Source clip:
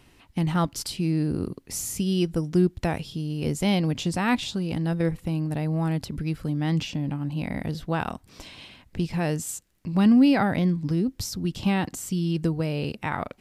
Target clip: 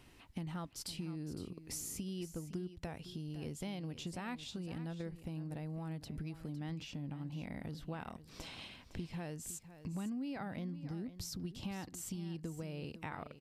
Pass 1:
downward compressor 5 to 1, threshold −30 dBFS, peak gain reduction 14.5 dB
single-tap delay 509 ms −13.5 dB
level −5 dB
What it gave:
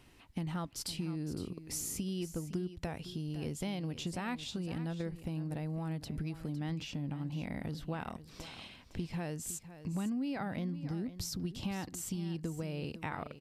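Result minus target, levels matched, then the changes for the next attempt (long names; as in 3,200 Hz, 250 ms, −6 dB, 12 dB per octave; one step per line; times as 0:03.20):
downward compressor: peak gain reduction −5 dB
change: downward compressor 5 to 1, threshold −36 dBFS, peak gain reduction 19 dB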